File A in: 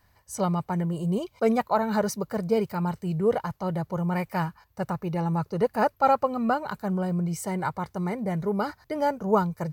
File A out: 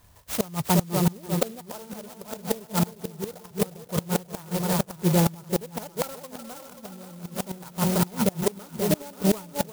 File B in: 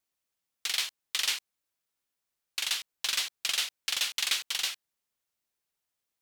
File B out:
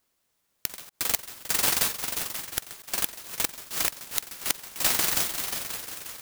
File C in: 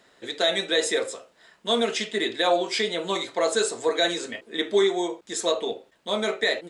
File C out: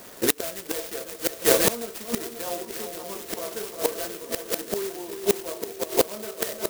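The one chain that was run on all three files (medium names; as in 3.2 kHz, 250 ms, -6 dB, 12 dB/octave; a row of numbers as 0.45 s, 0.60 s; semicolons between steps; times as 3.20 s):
multi-head delay 178 ms, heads second and third, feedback 49%, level -8 dB; dynamic bell 1.4 kHz, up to +3 dB, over -42 dBFS, Q 5.8; inverted gate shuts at -18 dBFS, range -25 dB; band-stop 810 Hz, Q 13; sampling jitter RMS 0.13 ms; normalise loudness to -27 LUFS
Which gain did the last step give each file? +7.5 dB, +12.0 dB, +14.5 dB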